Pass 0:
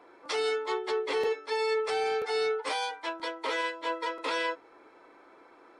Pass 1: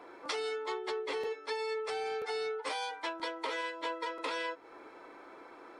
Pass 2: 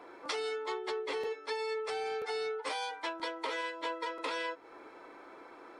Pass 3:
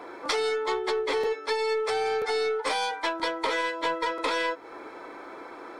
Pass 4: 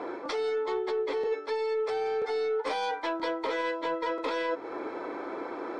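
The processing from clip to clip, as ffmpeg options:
-af "acompressor=threshold=0.0126:ratio=6,volume=1.58"
-af anull
-filter_complex "[0:a]bandreject=f=2800:w=9,asplit=2[s0][s1];[s1]aeval=exprs='clip(val(0),-1,0.0119)':c=same,volume=0.531[s2];[s0][s2]amix=inputs=2:normalize=0,volume=2"
-af "lowpass=6100,equalizer=f=350:w=0.46:g=8,areverse,acompressor=threshold=0.0398:ratio=6,areverse"

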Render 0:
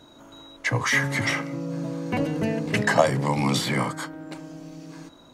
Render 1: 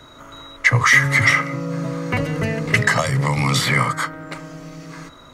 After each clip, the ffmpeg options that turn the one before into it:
-filter_complex "[0:a]lowshelf=f=130:g=6.5,acrossover=split=190|3000[s0][s1][s2];[s1]acompressor=threshold=0.0501:ratio=6[s3];[s0][s3][s2]amix=inputs=3:normalize=0,equalizer=f=200:t=o:w=0.33:g=-9,equalizer=f=315:t=o:w=0.33:g=-8,equalizer=f=800:t=o:w=0.33:g=-4,equalizer=f=1250:t=o:w=0.33:g=10,equalizer=f=2000:t=o:w=0.33:g=9,volume=2.11"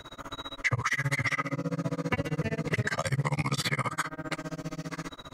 -af "alimiter=limit=0.335:level=0:latency=1:release=33,acompressor=threshold=0.0316:ratio=2.5,tremolo=f=15:d=1,volume=1.41"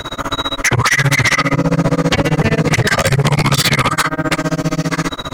-af "aeval=exprs='0.2*sin(PI/2*3.55*val(0)/0.2)':c=same,volume=2"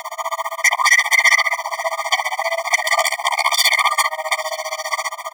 -filter_complex "[0:a]aecho=1:1:879:0.119,asplit=2[s0][s1];[s1]acrusher=bits=3:mix=0:aa=0.000001,volume=0.299[s2];[s0][s2]amix=inputs=2:normalize=0,afftfilt=real='re*eq(mod(floor(b*sr/1024/610),2),1)':imag='im*eq(mod(floor(b*sr/1024/610),2),1)':win_size=1024:overlap=0.75"

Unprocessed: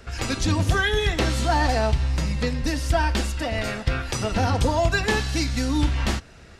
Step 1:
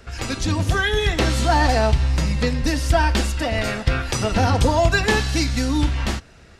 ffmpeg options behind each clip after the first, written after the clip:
-af "dynaudnorm=f=220:g=9:m=1.58"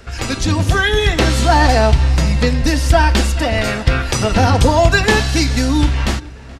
-filter_complex "[0:a]asplit=2[s0][s1];[s1]adelay=426,lowpass=f=3100:p=1,volume=0.0841,asplit=2[s2][s3];[s3]adelay=426,lowpass=f=3100:p=1,volume=0.54,asplit=2[s4][s5];[s5]adelay=426,lowpass=f=3100:p=1,volume=0.54,asplit=2[s6][s7];[s7]adelay=426,lowpass=f=3100:p=1,volume=0.54[s8];[s0][s2][s4][s6][s8]amix=inputs=5:normalize=0,volume=1.88"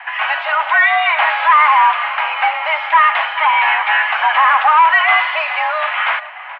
-filter_complex "[0:a]asplit=2[s0][s1];[s1]highpass=f=720:p=1,volume=14.1,asoftclip=type=tanh:threshold=0.891[s2];[s0][s2]amix=inputs=2:normalize=0,lowpass=f=2100:p=1,volume=0.501,highpass=f=430:t=q:w=0.5412,highpass=f=430:t=q:w=1.307,lowpass=f=2500:t=q:w=0.5176,lowpass=f=2500:t=q:w=0.7071,lowpass=f=2500:t=q:w=1.932,afreqshift=310,volume=0.891"

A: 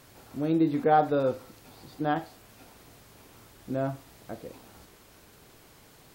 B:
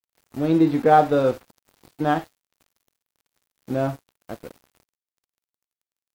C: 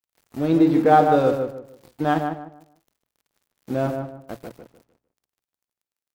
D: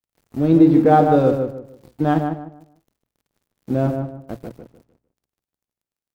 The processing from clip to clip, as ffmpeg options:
-af "aeval=exprs='sgn(val(0))*max(abs(val(0))-0.00562,0)':c=same,volume=2.24"
-filter_complex "[0:a]bandreject=f=60:t=h:w=6,bandreject=f=120:t=h:w=6,asplit=2[s0][s1];[s1]adelay=151,lowpass=f=1600:p=1,volume=0.562,asplit=2[s2][s3];[s3]adelay=151,lowpass=f=1600:p=1,volume=0.29,asplit=2[s4][s5];[s5]adelay=151,lowpass=f=1600:p=1,volume=0.29,asplit=2[s6][s7];[s7]adelay=151,lowpass=f=1600:p=1,volume=0.29[s8];[s2][s4][s6][s8]amix=inputs=4:normalize=0[s9];[s0][s9]amix=inputs=2:normalize=0"
-af "lowshelf=f=480:g=11,volume=0.708"

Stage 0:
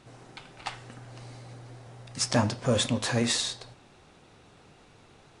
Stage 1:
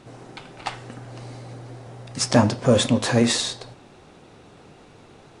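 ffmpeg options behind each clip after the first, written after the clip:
-af "equalizer=f=340:w=0.43:g=5.5,volume=1.58"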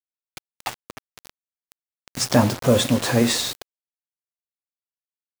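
-af "acrusher=bits=4:mix=0:aa=0.000001"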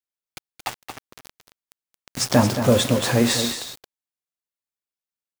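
-af "aecho=1:1:224:0.355"

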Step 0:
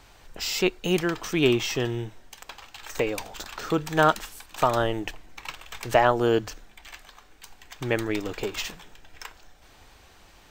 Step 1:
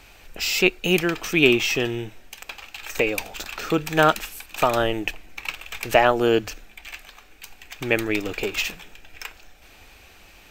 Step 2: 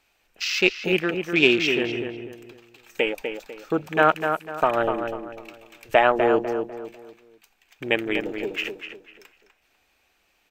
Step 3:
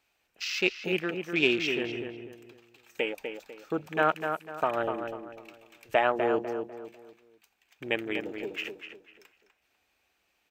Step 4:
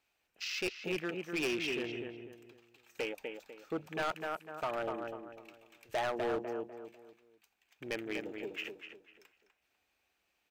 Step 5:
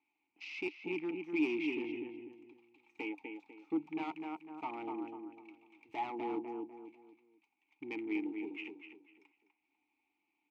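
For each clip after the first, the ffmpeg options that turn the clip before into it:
-af "equalizer=f=125:t=o:w=0.33:g=-6,equalizer=f=1000:t=o:w=0.33:g=-5,equalizer=f=2500:t=o:w=0.33:g=9,equalizer=f=12500:t=o:w=0.33:g=8,volume=1.41"
-filter_complex "[0:a]lowshelf=f=150:g=-11.5,afwtdn=0.0501,asplit=2[s0][s1];[s1]adelay=248,lowpass=f=2400:p=1,volume=0.501,asplit=2[s2][s3];[s3]adelay=248,lowpass=f=2400:p=1,volume=0.35,asplit=2[s4][s5];[s5]adelay=248,lowpass=f=2400:p=1,volume=0.35,asplit=2[s6][s7];[s7]adelay=248,lowpass=f=2400:p=1,volume=0.35[s8];[s0][s2][s4][s6][s8]amix=inputs=5:normalize=0"
-af "highpass=49,volume=0.447"
-af "asoftclip=type=hard:threshold=0.0631,volume=0.531"
-filter_complex "[0:a]asplit=3[s0][s1][s2];[s0]bandpass=f=300:t=q:w=8,volume=1[s3];[s1]bandpass=f=870:t=q:w=8,volume=0.501[s4];[s2]bandpass=f=2240:t=q:w=8,volume=0.355[s5];[s3][s4][s5]amix=inputs=3:normalize=0,volume=3.16"

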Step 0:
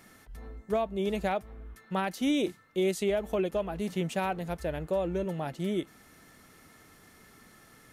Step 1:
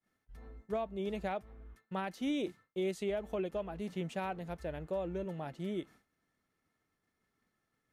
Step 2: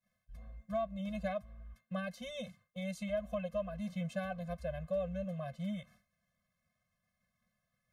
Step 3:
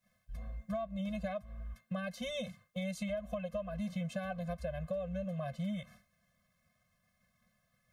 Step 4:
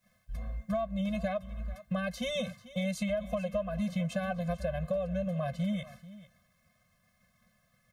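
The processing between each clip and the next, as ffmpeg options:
-af "agate=range=0.0224:threshold=0.00631:ratio=3:detection=peak,highshelf=f=6900:g=-9.5,volume=0.447"
-af "afftfilt=real='re*eq(mod(floor(b*sr/1024/250),2),0)':imag='im*eq(mod(floor(b*sr/1024/250),2),0)':win_size=1024:overlap=0.75,volume=1.26"
-af "acompressor=threshold=0.00794:ratio=6,volume=2.24"
-af "aecho=1:1:440:0.133,volume=1.88"

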